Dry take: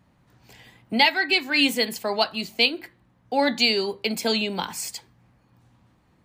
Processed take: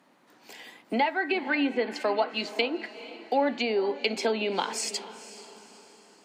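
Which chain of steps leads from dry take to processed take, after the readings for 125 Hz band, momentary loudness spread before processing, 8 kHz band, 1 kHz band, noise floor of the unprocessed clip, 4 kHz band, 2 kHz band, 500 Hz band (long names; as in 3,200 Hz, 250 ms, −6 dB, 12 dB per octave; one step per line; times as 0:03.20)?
can't be measured, 11 LU, −2.5 dB, −2.0 dB, −63 dBFS, −11.0 dB, −6.5 dB, −0.5 dB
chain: treble cut that deepens with the level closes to 1,300 Hz, closed at −18.5 dBFS
high-pass filter 260 Hz 24 dB per octave
downward compressor 2 to 1, threshold −31 dBFS, peak gain reduction 8 dB
feedback delay with all-pass diffusion 464 ms, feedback 45%, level −15 dB
level +4.5 dB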